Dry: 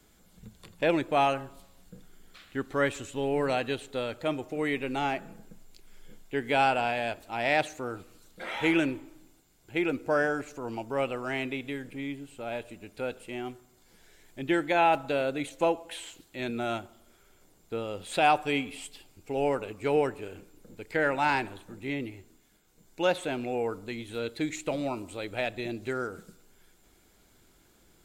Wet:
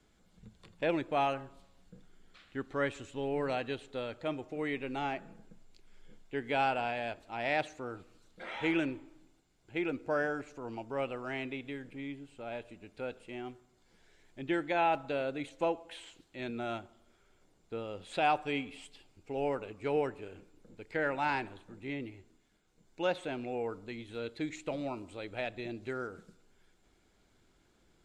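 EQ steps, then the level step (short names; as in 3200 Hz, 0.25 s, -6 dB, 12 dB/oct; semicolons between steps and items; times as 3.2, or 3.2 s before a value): air absorption 67 m; -5.5 dB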